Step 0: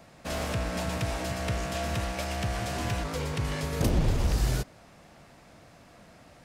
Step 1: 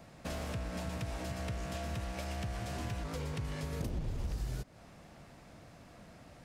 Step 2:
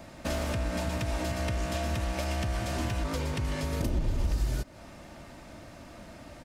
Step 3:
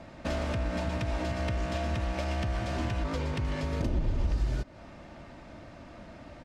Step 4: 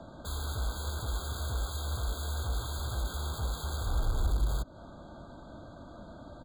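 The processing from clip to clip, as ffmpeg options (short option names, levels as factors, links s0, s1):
-af "acompressor=threshold=0.0178:ratio=6,lowshelf=f=300:g=5,volume=0.668"
-af "aecho=1:1:3.3:0.38,volume=2.37"
-af "adynamicsmooth=sensitivity=3:basefreq=4800"
-filter_complex "[0:a]acrossover=split=110[s0][s1];[s1]aeval=exprs='(mod(56.2*val(0)+1,2)-1)/56.2':c=same[s2];[s0][s2]amix=inputs=2:normalize=0,afftfilt=real='re*eq(mod(floor(b*sr/1024/1600),2),0)':imag='im*eq(mod(floor(b*sr/1024/1600),2),0)':win_size=1024:overlap=0.75"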